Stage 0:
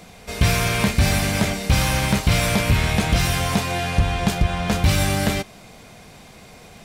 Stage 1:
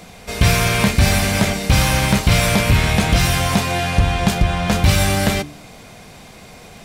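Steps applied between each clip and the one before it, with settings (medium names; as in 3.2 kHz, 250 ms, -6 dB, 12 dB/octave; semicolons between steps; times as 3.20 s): de-hum 73.07 Hz, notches 6; trim +4 dB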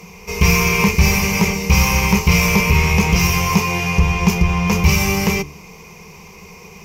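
rippled EQ curve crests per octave 0.79, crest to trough 16 dB; trim -2.5 dB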